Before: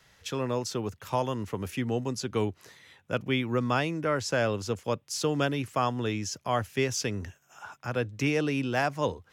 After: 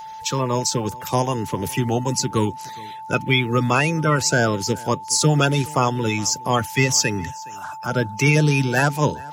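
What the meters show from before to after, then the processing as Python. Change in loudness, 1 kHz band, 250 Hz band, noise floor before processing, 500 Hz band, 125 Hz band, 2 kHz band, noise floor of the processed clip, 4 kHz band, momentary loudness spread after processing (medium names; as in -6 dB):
+9.5 dB, +9.5 dB, +8.0 dB, -65 dBFS, +6.0 dB, +12.0 dB, +10.5 dB, -35 dBFS, +11.0 dB, 9 LU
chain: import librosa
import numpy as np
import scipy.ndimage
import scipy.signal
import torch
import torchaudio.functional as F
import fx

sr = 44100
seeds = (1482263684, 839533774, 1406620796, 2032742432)

p1 = fx.spec_quant(x, sr, step_db=30)
p2 = fx.peak_eq(p1, sr, hz=150.0, db=8.5, octaves=0.38)
p3 = p2 + 10.0 ** (-41.0 / 20.0) * np.sin(2.0 * np.pi * 880.0 * np.arange(len(p2)) / sr)
p4 = fx.high_shelf(p3, sr, hz=3900.0, db=10.0)
p5 = p4 + fx.echo_single(p4, sr, ms=417, db=-23.0, dry=0)
y = F.gain(torch.from_numpy(p5), 7.5).numpy()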